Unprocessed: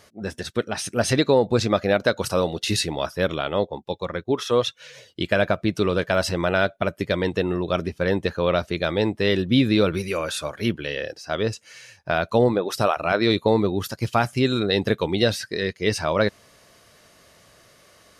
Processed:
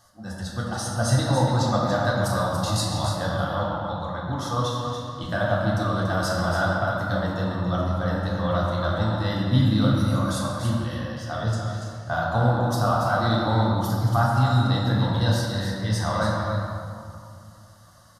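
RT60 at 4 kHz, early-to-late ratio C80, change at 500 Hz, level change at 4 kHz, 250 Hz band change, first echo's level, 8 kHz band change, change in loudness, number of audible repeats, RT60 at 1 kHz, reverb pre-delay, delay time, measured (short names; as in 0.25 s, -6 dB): 1.4 s, 0.0 dB, -6.0 dB, -4.0 dB, -1.5 dB, -7.5 dB, -1.0 dB, -1.0 dB, 1, 2.4 s, 3 ms, 0.285 s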